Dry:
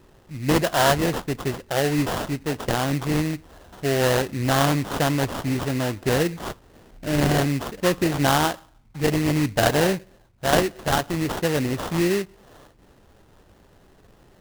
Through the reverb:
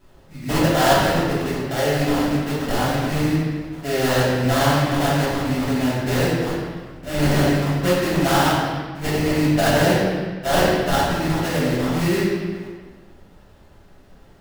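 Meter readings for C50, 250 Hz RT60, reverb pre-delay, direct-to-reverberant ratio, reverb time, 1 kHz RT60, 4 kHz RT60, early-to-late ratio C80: -1.5 dB, 1.7 s, 3 ms, -9.5 dB, 1.4 s, 1.3 s, 1.2 s, 1.0 dB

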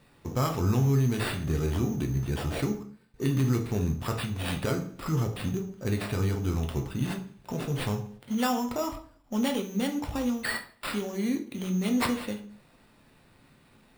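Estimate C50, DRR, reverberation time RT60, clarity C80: 12.0 dB, 4.0 dB, 0.45 s, 16.0 dB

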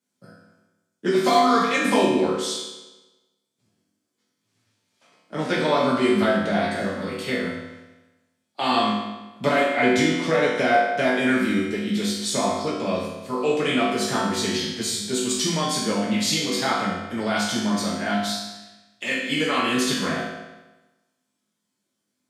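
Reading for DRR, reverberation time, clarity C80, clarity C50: -8.0 dB, 1.1 s, 3.5 dB, 0.5 dB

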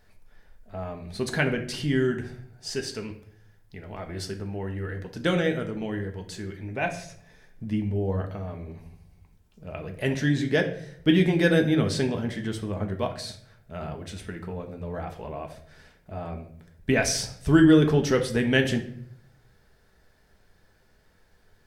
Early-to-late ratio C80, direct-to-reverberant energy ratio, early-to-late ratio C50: 14.0 dB, 3.5 dB, 10.5 dB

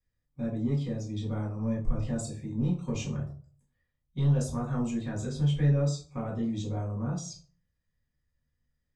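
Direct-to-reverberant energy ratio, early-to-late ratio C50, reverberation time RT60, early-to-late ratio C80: -4.0 dB, 8.0 dB, 0.45 s, 12.5 dB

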